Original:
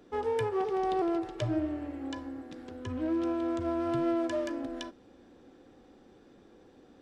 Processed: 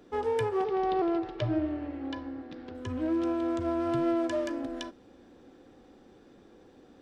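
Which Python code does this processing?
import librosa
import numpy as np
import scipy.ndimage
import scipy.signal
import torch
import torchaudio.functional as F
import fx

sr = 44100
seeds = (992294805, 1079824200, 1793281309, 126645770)

y = fx.lowpass(x, sr, hz=4900.0, slope=24, at=(0.64, 2.75))
y = y * librosa.db_to_amplitude(1.5)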